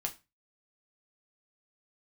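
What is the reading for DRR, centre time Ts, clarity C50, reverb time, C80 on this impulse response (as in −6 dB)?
1.5 dB, 9 ms, 16.5 dB, 0.25 s, 23.5 dB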